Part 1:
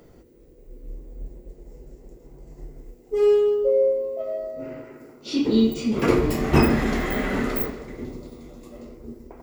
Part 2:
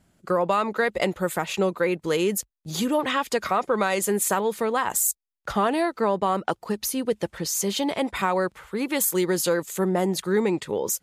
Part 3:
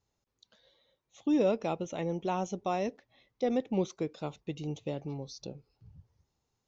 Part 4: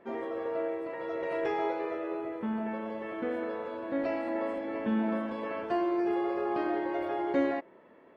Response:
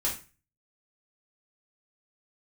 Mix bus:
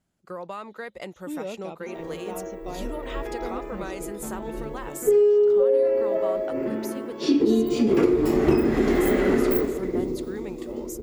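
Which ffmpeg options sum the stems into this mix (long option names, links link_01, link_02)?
-filter_complex "[0:a]equalizer=frequency=360:width=1.7:gain=13,adelay=1950,volume=0.5dB[link_01];[1:a]volume=-13.5dB[link_02];[2:a]volume=-7dB[link_03];[3:a]adelay=1800,volume=-4dB[link_04];[link_01][link_02][link_03][link_04]amix=inputs=4:normalize=0,acompressor=threshold=-16dB:ratio=8"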